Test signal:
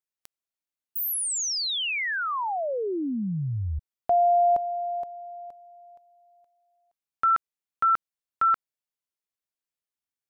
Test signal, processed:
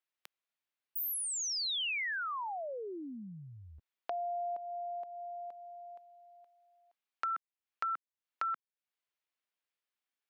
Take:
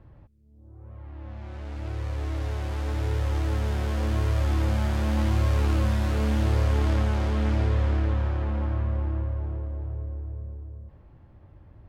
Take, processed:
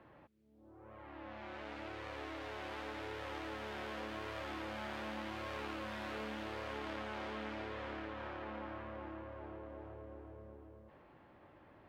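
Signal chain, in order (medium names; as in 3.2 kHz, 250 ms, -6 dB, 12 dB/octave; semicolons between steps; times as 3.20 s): three-band isolator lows -16 dB, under 190 Hz, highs -19 dB, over 3.6 kHz; compression 3:1, threshold -44 dBFS; tilt EQ +2.5 dB/octave; trim +2.5 dB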